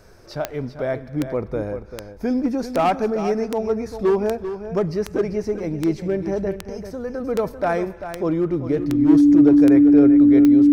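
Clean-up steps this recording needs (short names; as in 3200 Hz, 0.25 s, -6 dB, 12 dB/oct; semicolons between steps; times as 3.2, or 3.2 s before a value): de-click; notch 290 Hz, Q 30; inverse comb 0.392 s -10.5 dB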